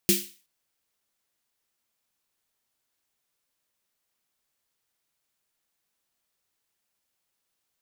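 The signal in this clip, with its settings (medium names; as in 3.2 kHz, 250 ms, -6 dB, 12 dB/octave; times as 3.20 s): snare drum length 0.37 s, tones 200 Hz, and 350 Hz, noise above 2.2 kHz, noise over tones 1.5 dB, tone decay 0.27 s, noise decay 0.39 s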